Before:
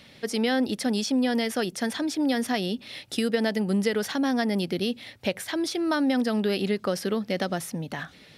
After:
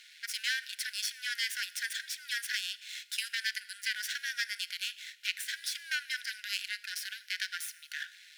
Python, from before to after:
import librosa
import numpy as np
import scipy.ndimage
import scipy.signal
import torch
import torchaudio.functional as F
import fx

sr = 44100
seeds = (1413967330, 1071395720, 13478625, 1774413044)

y = np.maximum(x, 0.0)
y = fx.brickwall_highpass(y, sr, low_hz=1400.0)
y = fx.rev_schroeder(y, sr, rt60_s=1.1, comb_ms=27, drr_db=17.5)
y = y * librosa.db_to_amplitude(2.5)